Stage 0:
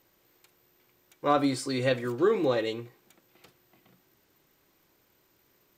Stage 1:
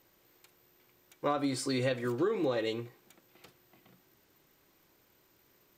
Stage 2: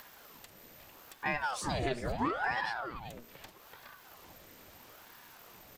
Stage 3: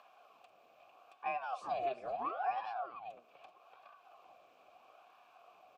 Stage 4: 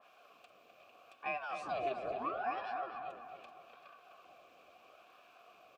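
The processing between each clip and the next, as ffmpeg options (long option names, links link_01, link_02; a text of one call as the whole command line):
ffmpeg -i in.wav -af "acompressor=threshold=-27dB:ratio=6" out.wav
ffmpeg -i in.wav -filter_complex "[0:a]acompressor=mode=upward:threshold=-38dB:ratio=2.5,asplit=2[link_01][link_02];[link_02]adelay=384.8,volume=-8dB,highshelf=frequency=4000:gain=-8.66[link_03];[link_01][link_03]amix=inputs=2:normalize=0,aeval=exprs='val(0)*sin(2*PI*730*n/s+730*0.85/0.77*sin(2*PI*0.77*n/s))':channel_layout=same" out.wav
ffmpeg -i in.wav -filter_complex "[0:a]asplit=3[link_01][link_02][link_03];[link_01]bandpass=frequency=730:width_type=q:width=8,volume=0dB[link_04];[link_02]bandpass=frequency=1090:width_type=q:width=8,volume=-6dB[link_05];[link_03]bandpass=frequency=2440:width_type=q:width=8,volume=-9dB[link_06];[link_04][link_05][link_06]amix=inputs=3:normalize=0,volume=5dB" out.wav
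ffmpeg -i in.wav -filter_complex "[0:a]equalizer=frequency=860:width_type=o:width=0.61:gain=-11,asplit=2[link_01][link_02];[link_02]adelay=254,lowpass=frequency=3000:poles=1,volume=-6.5dB,asplit=2[link_03][link_04];[link_04]adelay=254,lowpass=frequency=3000:poles=1,volume=0.47,asplit=2[link_05][link_06];[link_06]adelay=254,lowpass=frequency=3000:poles=1,volume=0.47,asplit=2[link_07][link_08];[link_08]adelay=254,lowpass=frequency=3000:poles=1,volume=0.47,asplit=2[link_09][link_10];[link_10]adelay=254,lowpass=frequency=3000:poles=1,volume=0.47,asplit=2[link_11][link_12];[link_12]adelay=254,lowpass=frequency=3000:poles=1,volume=0.47[link_13];[link_03][link_05][link_07][link_09][link_11][link_13]amix=inputs=6:normalize=0[link_14];[link_01][link_14]amix=inputs=2:normalize=0,adynamicequalizer=threshold=0.00141:dfrequency=2000:dqfactor=0.7:tfrequency=2000:tqfactor=0.7:attack=5:release=100:ratio=0.375:range=1.5:mode=cutabove:tftype=highshelf,volume=4.5dB" out.wav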